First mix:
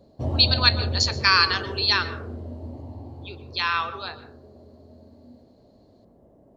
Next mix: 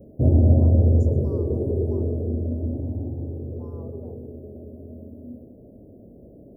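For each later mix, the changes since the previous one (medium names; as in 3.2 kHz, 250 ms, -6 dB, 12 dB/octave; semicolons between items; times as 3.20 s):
background +10.0 dB; master: add inverse Chebyshev band-stop 1.6–4.3 kHz, stop band 70 dB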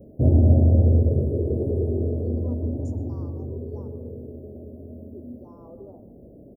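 speech: entry +1.85 s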